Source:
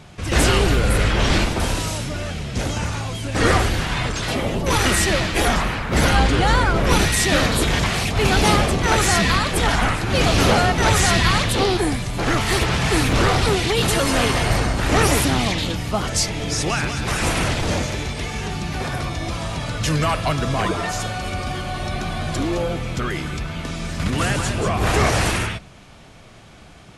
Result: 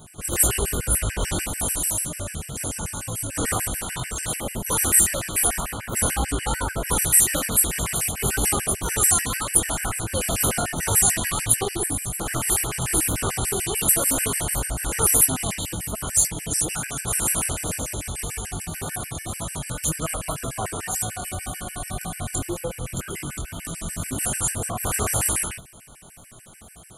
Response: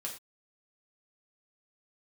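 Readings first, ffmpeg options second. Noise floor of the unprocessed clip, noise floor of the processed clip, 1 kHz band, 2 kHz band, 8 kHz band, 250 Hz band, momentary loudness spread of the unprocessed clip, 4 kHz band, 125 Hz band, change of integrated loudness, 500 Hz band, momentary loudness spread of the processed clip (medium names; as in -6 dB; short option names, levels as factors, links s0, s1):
-44 dBFS, -45 dBFS, -9.5 dB, -9.5 dB, +6.5 dB, -9.5 dB, 10 LU, -10.0 dB, -9.0 dB, -2.5 dB, -9.5 dB, 13 LU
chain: -filter_complex "[0:a]asplit=2[s0][s1];[s1]acompressor=threshold=0.0501:ratio=16,volume=1.19[s2];[s0][s2]amix=inputs=2:normalize=0,flanger=delay=17.5:depth=6.8:speed=1.9,aexciter=amount=12.8:drive=4.5:freq=7500,afftfilt=real='re*gt(sin(2*PI*6.8*pts/sr)*(1-2*mod(floor(b*sr/1024/1500),2)),0)':imag='im*gt(sin(2*PI*6.8*pts/sr)*(1-2*mod(floor(b*sr/1024/1500),2)),0)':win_size=1024:overlap=0.75,volume=0.501"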